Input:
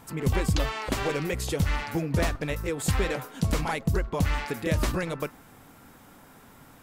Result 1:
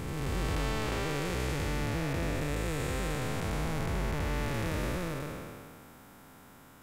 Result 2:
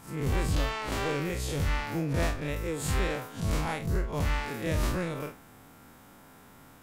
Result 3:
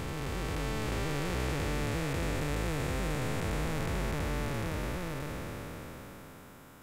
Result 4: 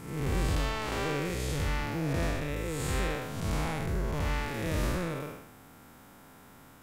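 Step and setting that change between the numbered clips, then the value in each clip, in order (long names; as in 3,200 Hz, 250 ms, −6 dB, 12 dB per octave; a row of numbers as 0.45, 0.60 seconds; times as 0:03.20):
spectrum smeared in time, width: 677, 91, 1,690, 234 milliseconds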